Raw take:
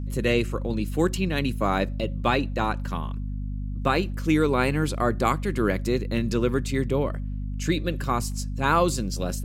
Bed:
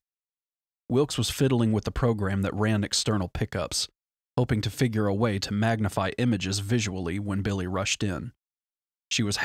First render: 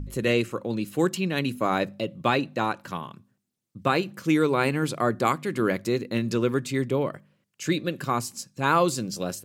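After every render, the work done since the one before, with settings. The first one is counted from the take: de-hum 50 Hz, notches 5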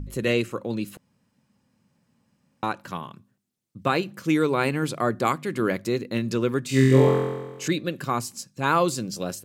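0.97–2.63 room tone; 6.67–7.68 flutter echo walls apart 3.9 m, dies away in 1.2 s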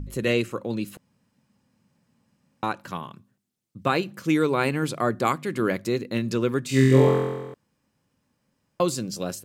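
7.54–8.8 room tone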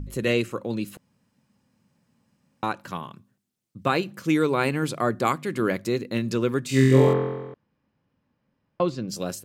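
7.13–9.09 air absorption 240 m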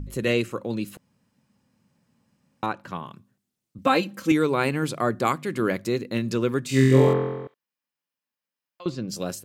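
2.66–3.06 high shelf 4900 Hz -11 dB; 3.78–4.32 comb 3.8 ms, depth 96%; 7.47–8.86 differentiator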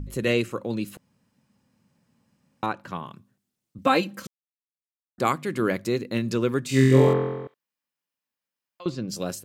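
4.27–5.18 mute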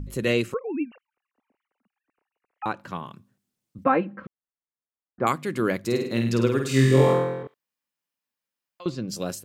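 0.54–2.66 sine-wave speech; 3.84–5.27 LPF 1900 Hz 24 dB/oct; 5.79–7.43 flutter echo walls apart 8.8 m, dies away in 0.59 s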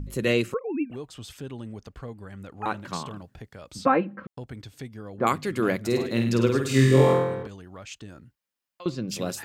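add bed -14.5 dB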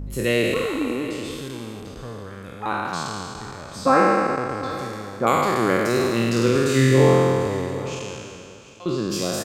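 spectral trails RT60 2.51 s; echo 0.746 s -16 dB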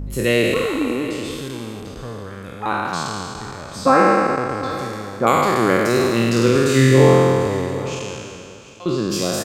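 gain +3.5 dB; limiter -2 dBFS, peak gain reduction 1.5 dB

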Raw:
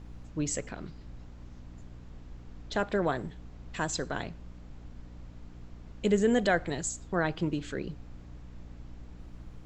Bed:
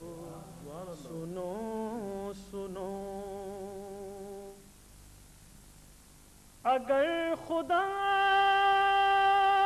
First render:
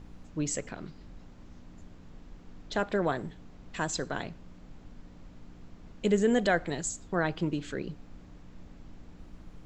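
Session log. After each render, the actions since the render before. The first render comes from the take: de-hum 60 Hz, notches 2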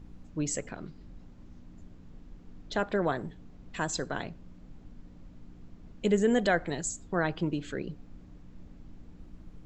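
denoiser 6 dB, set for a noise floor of -52 dBFS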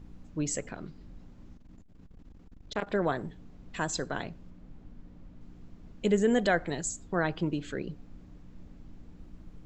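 1.53–2.91 core saturation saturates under 880 Hz; 4.5–5.41 high shelf 4300 Hz -7.5 dB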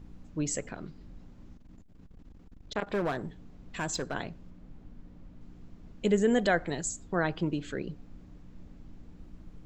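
2.86–4.15 hard clip -25 dBFS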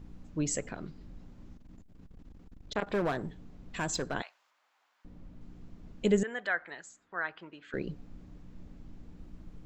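4.22–5.05 HPF 900 Hz 24 dB/oct; 6.23–7.74 band-pass 1600 Hz, Q 1.7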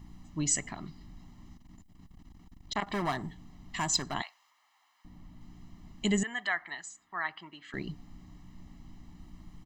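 tilt +1.5 dB/oct; comb 1 ms, depth 86%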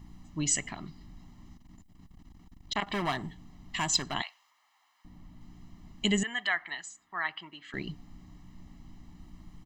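dynamic EQ 2900 Hz, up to +7 dB, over -53 dBFS, Q 1.6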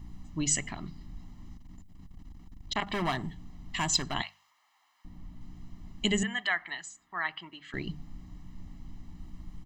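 low shelf 130 Hz +8 dB; notches 50/100/150/200 Hz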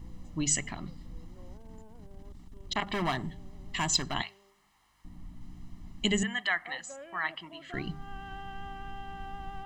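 add bed -19 dB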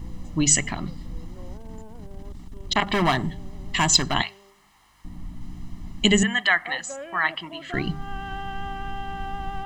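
gain +9.5 dB

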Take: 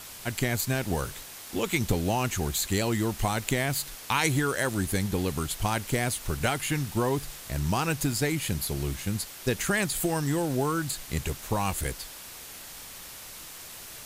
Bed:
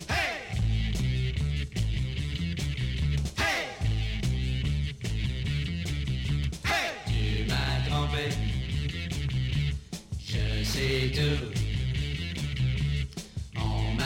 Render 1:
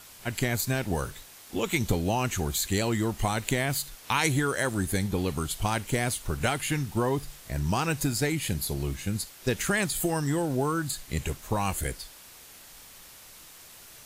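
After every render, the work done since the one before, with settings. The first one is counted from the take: noise print and reduce 6 dB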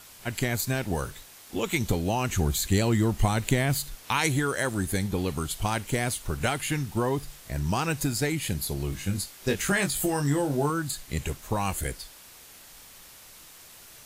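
2.29–4.03 low shelf 260 Hz +7 dB; 8.9–10.7 doubler 21 ms -5 dB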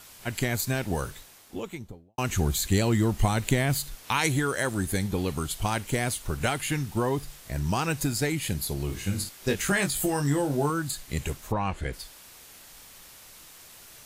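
1.1–2.18 studio fade out; 8.84–9.29 flutter echo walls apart 9 m, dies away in 0.35 s; 11.51–11.92 LPF 2000 Hz -> 3900 Hz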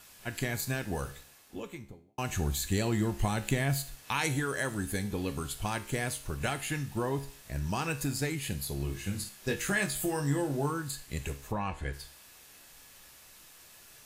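resonator 69 Hz, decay 0.5 s, harmonics all, mix 60%; small resonant body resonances 1700/2600 Hz, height 11 dB, ringing for 0.1 s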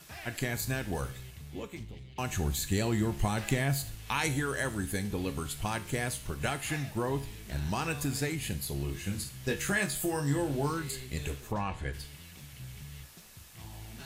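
add bed -18 dB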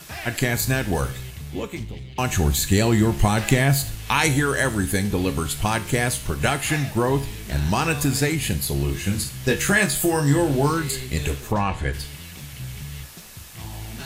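gain +11 dB

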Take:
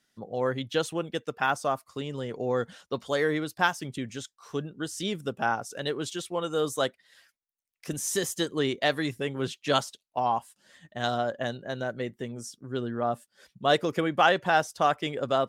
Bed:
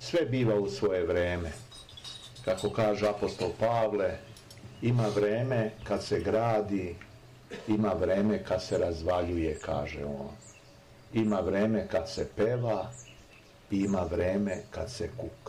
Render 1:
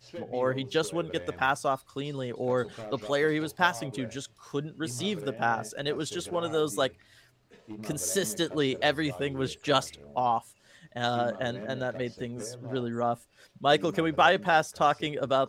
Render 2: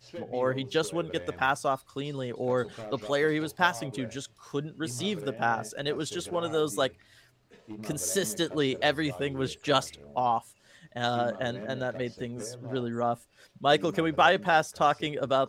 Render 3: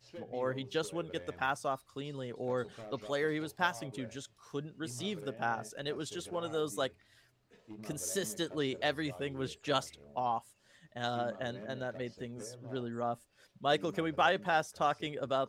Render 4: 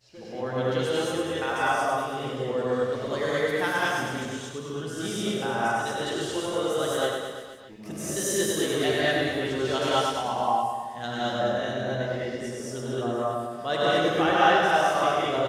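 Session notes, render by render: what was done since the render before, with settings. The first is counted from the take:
add bed -14 dB
nothing audible
gain -7 dB
reverse bouncing-ball echo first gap 0.1 s, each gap 1.1×, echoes 5; non-linear reverb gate 0.25 s rising, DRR -7 dB

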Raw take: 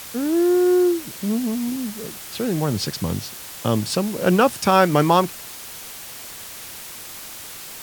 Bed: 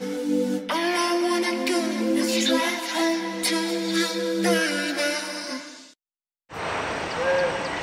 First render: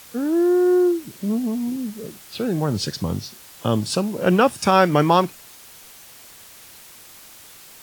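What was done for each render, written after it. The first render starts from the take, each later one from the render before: noise print and reduce 8 dB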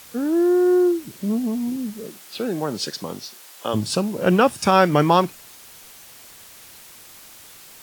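2.03–3.73 HPF 190 Hz -> 440 Hz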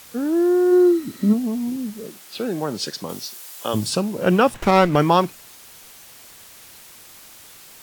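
0.71–1.32 small resonant body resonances 260/1300/1900/4000 Hz, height 11 dB -> 15 dB; 3.09–3.9 high shelf 5500 Hz +8 dB; 4.54–4.96 running maximum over 9 samples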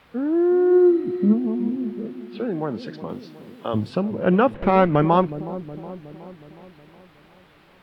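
air absorption 460 m; dark delay 0.367 s, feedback 57%, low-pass 590 Hz, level -12 dB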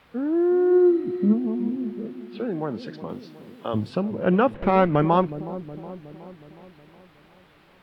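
gain -2 dB

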